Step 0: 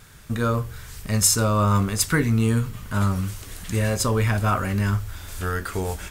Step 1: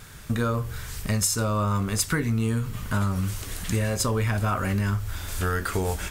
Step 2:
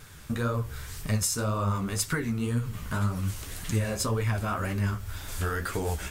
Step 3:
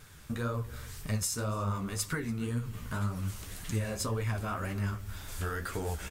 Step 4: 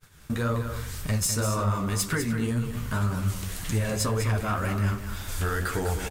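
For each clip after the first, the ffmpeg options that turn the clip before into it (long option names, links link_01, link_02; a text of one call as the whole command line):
ffmpeg -i in.wav -af "acompressor=threshold=-25dB:ratio=6,volume=3.5dB" out.wav
ffmpeg -i in.wav -af "flanger=delay=6.1:depth=9.4:regen=30:speed=1.9:shape=triangular" out.wav
ffmpeg -i in.wav -filter_complex "[0:a]asplit=2[link_01][link_02];[link_02]adelay=285.7,volume=-19dB,highshelf=frequency=4000:gain=-6.43[link_03];[link_01][link_03]amix=inputs=2:normalize=0,volume=-5dB" out.wav
ffmpeg -i in.wav -af "aeval=exprs='0.126*sin(PI/2*1.78*val(0)/0.126)':channel_layout=same,aecho=1:1:201:0.376,agate=range=-33dB:threshold=-36dB:ratio=3:detection=peak,volume=-1.5dB" out.wav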